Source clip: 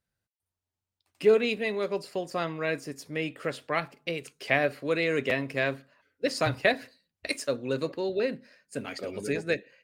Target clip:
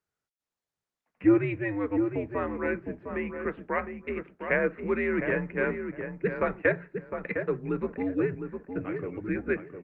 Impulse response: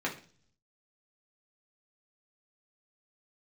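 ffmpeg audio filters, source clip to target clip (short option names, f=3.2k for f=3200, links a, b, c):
-filter_complex "[0:a]asplit=2[a][b];[b]adelay=708,lowpass=f=1.7k:p=1,volume=-6.5dB,asplit=2[c][d];[d]adelay=708,lowpass=f=1.7k:p=1,volume=0.22,asplit=2[e][f];[f]adelay=708,lowpass=f=1.7k:p=1,volume=0.22[g];[c][e][g]amix=inputs=3:normalize=0[h];[a][h]amix=inputs=2:normalize=0,highpass=f=190:t=q:w=0.5412,highpass=f=190:t=q:w=1.307,lowpass=f=2.3k:t=q:w=0.5176,lowpass=f=2.3k:t=q:w=0.7071,lowpass=f=2.3k:t=q:w=1.932,afreqshift=-100" -ar 48000 -c:a libopus -b:a 32k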